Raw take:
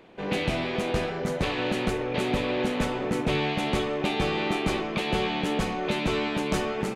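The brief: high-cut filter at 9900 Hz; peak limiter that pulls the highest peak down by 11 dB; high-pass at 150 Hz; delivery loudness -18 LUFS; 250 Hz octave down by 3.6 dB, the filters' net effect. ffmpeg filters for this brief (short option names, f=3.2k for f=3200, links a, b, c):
-af "highpass=150,lowpass=9.9k,equalizer=f=250:t=o:g=-4,volume=16.5dB,alimiter=limit=-10dB:level=0:latency=1"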